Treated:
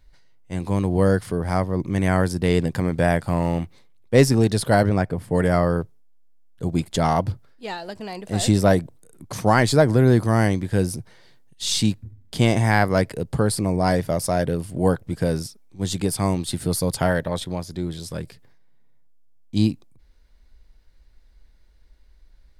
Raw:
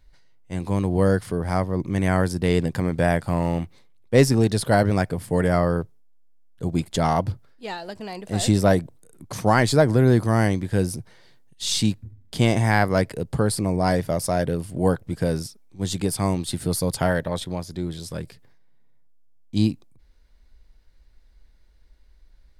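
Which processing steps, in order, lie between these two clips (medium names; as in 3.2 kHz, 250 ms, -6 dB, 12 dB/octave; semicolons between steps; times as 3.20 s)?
4.89–5.35 s: treble shelf 2.9 kHz -9.5 dB; trim +1 dB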